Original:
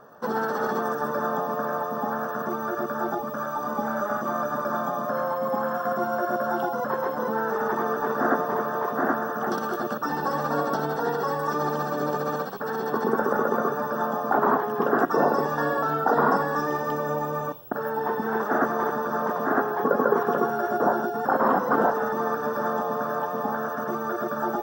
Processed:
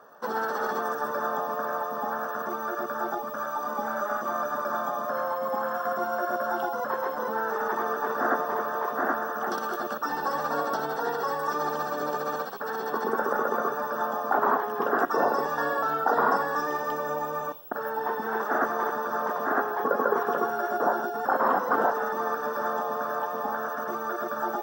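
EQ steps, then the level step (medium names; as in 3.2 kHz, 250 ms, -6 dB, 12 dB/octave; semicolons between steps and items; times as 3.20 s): high-pass 560 Hz 6 dB/octave; 0.0 dB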